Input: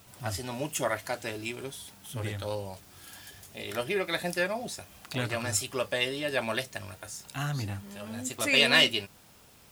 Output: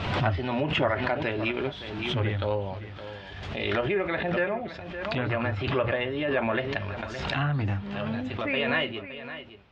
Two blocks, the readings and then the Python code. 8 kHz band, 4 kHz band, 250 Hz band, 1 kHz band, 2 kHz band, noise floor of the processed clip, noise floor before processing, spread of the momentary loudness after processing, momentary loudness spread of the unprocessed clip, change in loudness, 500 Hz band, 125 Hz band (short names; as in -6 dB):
under -20 dB, -5.5 dB, +6.0 dB, +5.5 dB, +0.5 dB, -42 dBFS, -56 dBFS, 11 LU, 18 LU, +1.0 dB, +4.5 dB, +7.5 dB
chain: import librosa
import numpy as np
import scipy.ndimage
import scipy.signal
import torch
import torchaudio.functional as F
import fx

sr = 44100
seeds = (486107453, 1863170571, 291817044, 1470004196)

p1 = fx.env_lowpass_down(x, sr, base_hz=2000.0, full_db=-27.5)
p2 = scipy.signal.sosfilt(scipy.signal.butter(4, 3400.0, 'lowpass', fs=sr, output='sos'), p1)
p3 = fx.peak_eq(p2, sr, hz=63.0, db=10.0, octaves=0.47)
p4 = fx.hum_notches(p3, sr, base_hz=60, count=3)
p5 = fx.rider(p4, sr, range_db=5, speed_s=0.5)
p6 = fx.quant_float(p5, sr, bits=8)
p7 = p6 + fx.echo_single(p6, sr, ms=566, db=-13.0, dry=0)
p8 = fx.pre_swell(p7, sr, db_per_s=37.0)
y = p8 * librosa.db_to_amplitude(3.5)